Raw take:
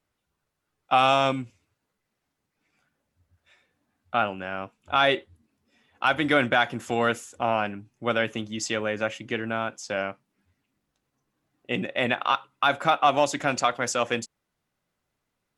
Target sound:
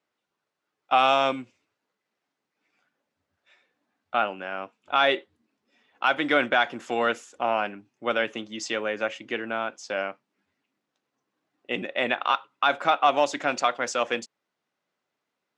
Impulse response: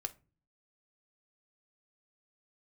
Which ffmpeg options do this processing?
-af "highpass=270,lowpass=5900"

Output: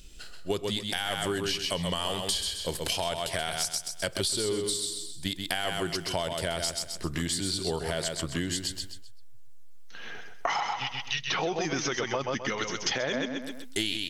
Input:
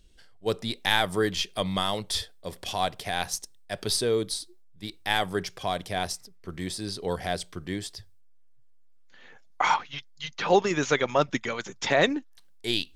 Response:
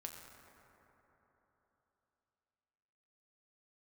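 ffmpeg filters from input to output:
-filter_complex "[0:a]highshelf=frequency=4600:gain=9,asplit=2[link_01][link_02];[link_02]aecho=0:1:119|238|357|476:0.473|0.142|0.0426|0.0128[link_03];[link_01][link_03]amix=inputs=2:normalize=0,alimiter=limit=-14.5dB:level=0:latency=1:release=13,acompressor=threshold=-36dB:ratio=6,asetrate=40517,aresample=44100,volume=8.5dB"

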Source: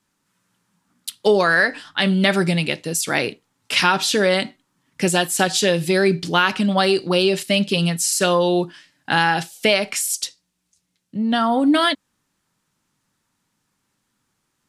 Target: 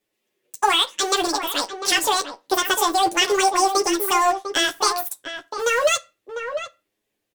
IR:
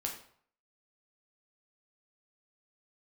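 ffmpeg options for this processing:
-filter_complex "[0:a]lowpass=11000,asplit=2[link_01][link_02];[link_02]aeval=exprs='val(0)*gte(abs(val(0)),0.112)':channel_layout=same,volume=-3dB[link_03];[link_01][link_03]amix=inputs=2:normalize=0,flanger=delay=18.5:depth=2.4:speed=0.49,asplit=2[link_04][link_05];[link_05]adelay=1399,volume=-8dB,highshelf=frequency=4000:gain=-31.5[link_06];[link_04][link_06]amix=inputs=2:normalize=0,asplit=2[link_07][link_08];[1:a]atrim=start_sample=2205,highshelf=frequency=7600:gain=-9.5[link_09];[link_08][link_09]afir=irnorm=-1:irlink=0,volume=-10.5dB[link_10];[link_07][link_10]amix=inputs=2:normalize=0,asetrate=88200,aresample=44100,volume=-5dB"

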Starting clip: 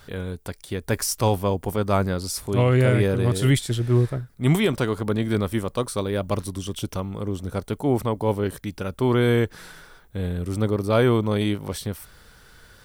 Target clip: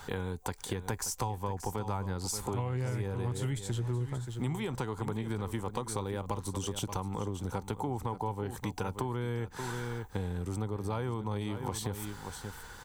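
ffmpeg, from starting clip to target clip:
ffmpeg -i in.wav -filter_complex "[0:a]superequalizer=8b=0.501:9b=2:15b=2,acrossover=split=130[link_01][link_02];[link_02]acompressor=threshold=-29dB:ratio=3[link_03];[link_01][link_03]amix=inputs=2:normalize=0,equalizer=frequency=860:width_type=o:width=1.6:gain=5,asplit=2[link_04][link_05];[link_05]aecho=0:1:579:0.237[link_06];[link_04][link_06]amix=inputs=2:normalize=0,acompressor=threshold=-31dB:ratio=6" out.wav

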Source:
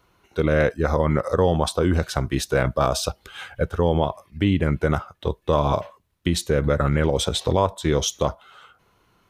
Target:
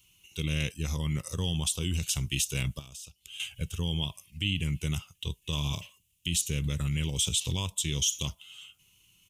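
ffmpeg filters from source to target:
ffmpeg -i in.wav -filter_complex "[0:a]firequalizer=gain_entry='entry(150,0);entry(230,-9);entry(590,-27);entry(970,-19);entry(1500,-23);entry(2800,11);entry(4100,-3);entry(6800,12);entry(14000,9)':delay=0.05:min_phase=1,alimiter=limit=-16.5dB:level=0:latency=1:release=25,asettb=1/sr,asplit=3[link_01][link_02][link_03];[link_01]atrim=end=2.794[link_04];[link_02]atrim=start=2.79:end=3.4,asetpts=PTS-STARTPTS,afade=type=in:duration=0.004:curve=qsin,afade=type=out:start_time=0.606:duration=0.004:curve=qsin,acompressor=threshold=-41dB:ratio=12[link_05];[link_03]atrim=start=3.396[link_06];[link_04][link_05]acrossfade=duration=0.004:curve1=hsin:curve2=qsin[link_07];[link_07][link_06]acrossfade=duration=0.004:curve1=qsin:curve2=hsin,lowshelf=frequency=200:gain=-7.5" out.wav

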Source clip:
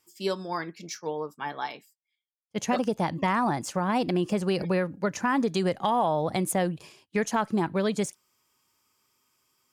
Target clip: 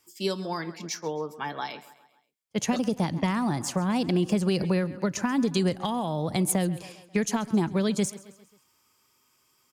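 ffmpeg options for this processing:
ffmpeg -i in.wav -filter_complex "[0:a]aecho=1:1:134|268|402|536:0.1|0.048|0.023|0.0111,acrossover=split=300|3000[link_01][link_02][link_03];[link_02]acompressor=threshold=-34dB:ratio=6[link_04];[link_01][link_04][link_03]amix=inputs=3:normalize=0,volume=4dB" out.wav

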